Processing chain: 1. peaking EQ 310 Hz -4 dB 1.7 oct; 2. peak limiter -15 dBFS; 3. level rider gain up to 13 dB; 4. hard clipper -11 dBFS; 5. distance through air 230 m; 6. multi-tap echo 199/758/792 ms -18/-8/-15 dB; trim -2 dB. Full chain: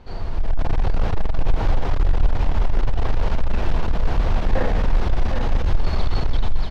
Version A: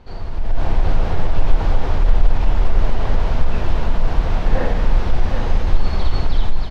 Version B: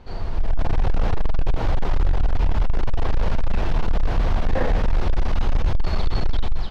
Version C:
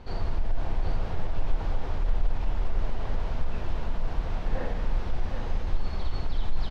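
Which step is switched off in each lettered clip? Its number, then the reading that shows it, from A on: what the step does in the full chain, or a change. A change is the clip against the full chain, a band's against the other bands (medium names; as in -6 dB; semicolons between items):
4, crest factor change +3.0 dB; 6, echo-to-direct -7.0 dB to none; 3, momentary loudness spread change -1 LU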